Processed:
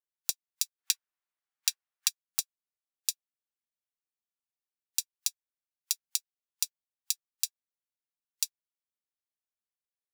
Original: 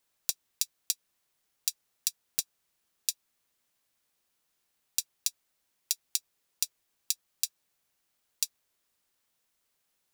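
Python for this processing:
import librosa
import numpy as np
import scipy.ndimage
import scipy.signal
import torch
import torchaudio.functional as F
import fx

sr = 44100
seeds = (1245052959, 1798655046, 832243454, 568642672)

y = fx.noise_reduce_blind(x, sr, reduce_db=24)
y = fx.peak_eq(y, sr, hz=1400.0, db=13.5, octaves=2.6, at=(0.78, 2.08), fade=0.02)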